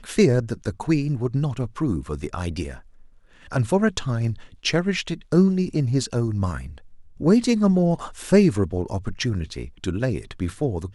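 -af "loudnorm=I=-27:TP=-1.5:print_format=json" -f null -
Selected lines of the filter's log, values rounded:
"input_i" : "-23.3",
"input_tp" : "-4.0",
"input_lra" : "4.1",
"input_thresh" : "-33.7",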